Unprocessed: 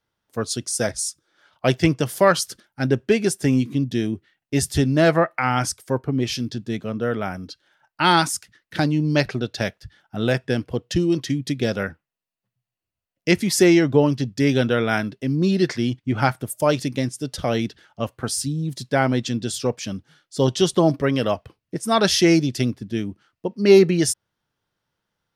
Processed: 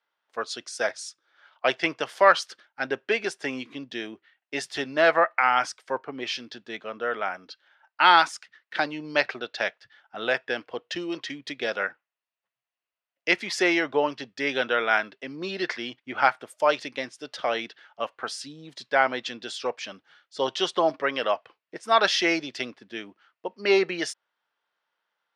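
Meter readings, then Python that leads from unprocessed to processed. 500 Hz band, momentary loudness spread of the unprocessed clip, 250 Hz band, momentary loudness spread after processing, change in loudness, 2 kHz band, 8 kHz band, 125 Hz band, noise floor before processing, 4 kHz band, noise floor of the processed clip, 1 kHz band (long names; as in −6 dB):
−6.0 dB, 13 LU, −13.5 dB, 17 LU, −4.5 dB, +2.0 dB, −12.5 dB, −25.5 dB, below −85 dBFS, −2.5 dB, below −85 dBFS, +1.0 dB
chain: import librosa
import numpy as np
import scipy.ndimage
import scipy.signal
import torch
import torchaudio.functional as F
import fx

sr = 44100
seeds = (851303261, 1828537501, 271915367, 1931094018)

y = fx.bandpass_edges(x, sr, low_hz=740.0, high_hz=3200.0)
y = y * 10.0 ** (2.5 / 20.0)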